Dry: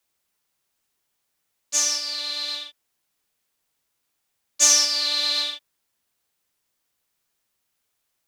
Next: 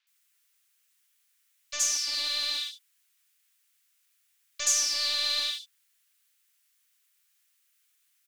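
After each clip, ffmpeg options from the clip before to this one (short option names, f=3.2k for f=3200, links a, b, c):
-filter_complex "[0:a]acompressor=threshold=-31dB:ratio=3,acrossover=split=1400[a][b];[a]acrusher=bits=5:dc=4:mix=0:aa=0.000001[c];[c][b]amix=inputs=2:normalize=0,acrossover=split=4600[d][e];[e]adelay=70[f];[d][f]amix=inputs=2:normalize=0,volume=6dB"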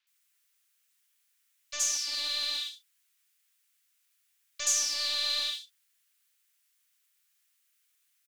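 -filter_complex "[0:a]asplit=2[a][b];[b]adelay=44,volume=-13dB[c];[a][c]amix=inputs=2:normalize=0,volume=-2.5dB"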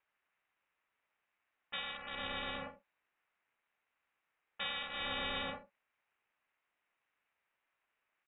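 -af "aeval=exprs='val(0)*sin(2*PI*180*n/s)':c=same,highshelf=f=2.1k:g=-11,lowpass=f=3.3k:t=q:w=0.5098,lowpass=f=3.3k:t=q:w=0.6013,lowpass=f=3.3k:t=q:w=0.9,lowpass=f=3.3k:t=q:w=2.563,afreqshift=-3900,volume=8dB"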